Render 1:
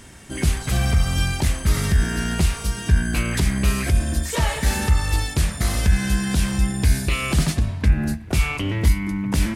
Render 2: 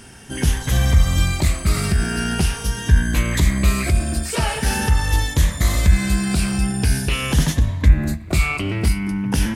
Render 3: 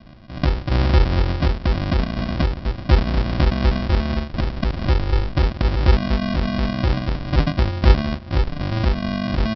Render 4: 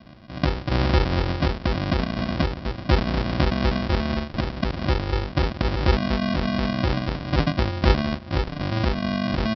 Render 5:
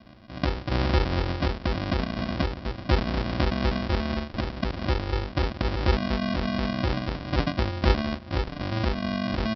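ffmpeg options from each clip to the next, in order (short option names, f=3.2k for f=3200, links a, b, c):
-af "afftfilt=real='re*pow(10,7/40*sin(2*PI*(1.1*log(max(b,1)*sr/1024/100)/log(2)-(0.44)*(pts-256)/sr)))':imag='im*pow(10,7/40*sin(2*PI*(1.1*log(max(b,1)*sr/1024/100)/log(2)-(0.44)*(pts-256)/sr)))':win_size=1024:overlap=0.75,volume=1.5dB"
-filter_complex "[0:a]lowpass=f=2.6k:w=0.5412,lowpass=f=2.6k:w=1.3066,aresample=11025,acrusher=samples=25:mix=1:aa=0.000001,aresample=44100,asplit=2[a][b];[b]adelay=1458,volume=-18dB,highshelf=f=4k:g=-32.8[c];[a][c]amix=inputs=2:normalize=0,volume=-1dB"
-af "highpass=f=110:p=1"
-af "equalizer=f=150:w=6.5:g=-7.5,volume=-3dB"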